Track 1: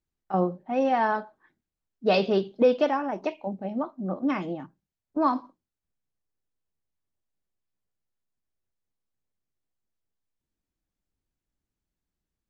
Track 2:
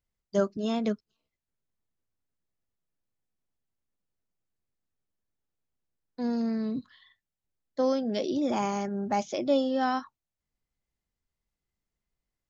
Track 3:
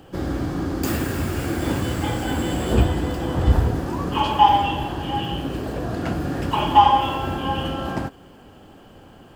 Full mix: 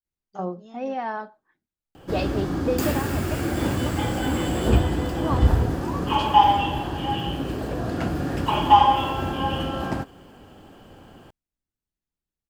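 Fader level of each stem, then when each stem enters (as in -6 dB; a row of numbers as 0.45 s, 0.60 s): -5.5 dB, -18.5 dB, -1.0 dB; 0.05 s, 0.00 s, 1.95 s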